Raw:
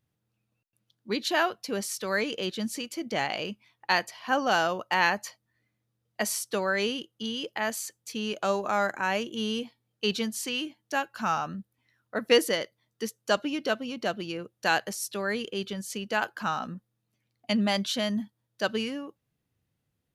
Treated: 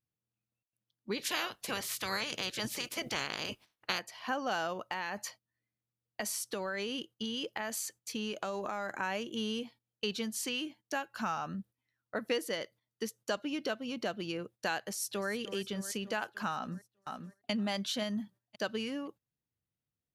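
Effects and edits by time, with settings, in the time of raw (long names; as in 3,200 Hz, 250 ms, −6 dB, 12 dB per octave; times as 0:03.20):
0:01.16–0:03.98: ceiling on every frequency bin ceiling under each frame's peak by 23 dB
0:04.73–0:08.91: downward compressor, threshold −29 dBFS
0:14.81–0:15.31: delay throw 300 ms, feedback 65%, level −14.5 dB
0:16.54–0:17.51: delay throw 520 ms, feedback 20%, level −7 dB
whole clip: noise gate −50 dBFS, range −13 dB; downward compressor 3 to 1, threshold −32 dBFS; level −1 dB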